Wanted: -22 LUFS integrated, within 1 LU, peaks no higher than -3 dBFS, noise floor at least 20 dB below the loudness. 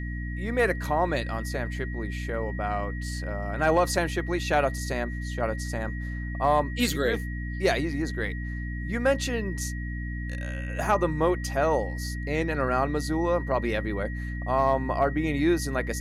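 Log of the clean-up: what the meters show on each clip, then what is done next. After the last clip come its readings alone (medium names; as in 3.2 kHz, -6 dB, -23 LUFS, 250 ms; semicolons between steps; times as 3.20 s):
hum 60 Hz; highest harmonic 300 Hz; hum level -30 dBFS; steady tone 1.9 kHz; tone level -40 dBFS; loudness -27.5 LUFS; peak level -11.0 dBFS; loudness target -22.0 LUFS
-> de-hum 60 Hz, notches 5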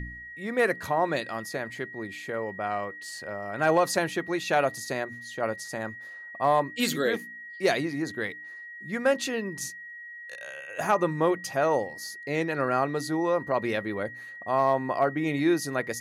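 hum not found; steady tone 1.9 kHz; tone level -40 dBFS
-> band-stop 1.9 kHz, Q 30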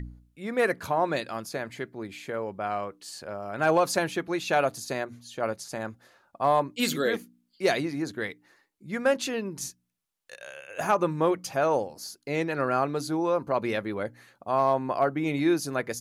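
steady tone not found; loudness -28.0 LUFS; peak level -12.5 dBFS; loudness target -22.0 LUFS
-> trim +6 dB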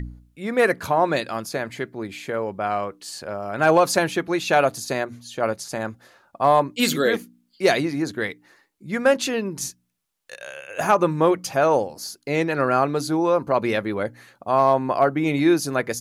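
loudness -22.0 LUFS; peak level -6.5 dBFS; noise floor -67 dBFS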